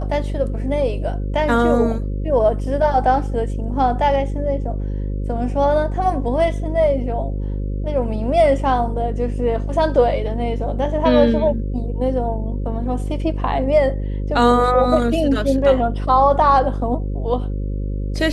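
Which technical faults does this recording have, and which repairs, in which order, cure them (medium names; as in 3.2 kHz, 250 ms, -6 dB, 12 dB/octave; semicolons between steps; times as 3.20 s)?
buzz 50 Hz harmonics 11 -23 dBFS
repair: de-hum 50 Hz, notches 11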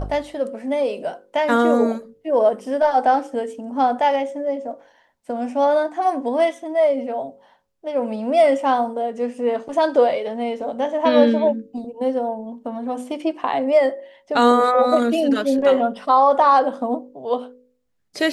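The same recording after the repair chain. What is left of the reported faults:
nothing left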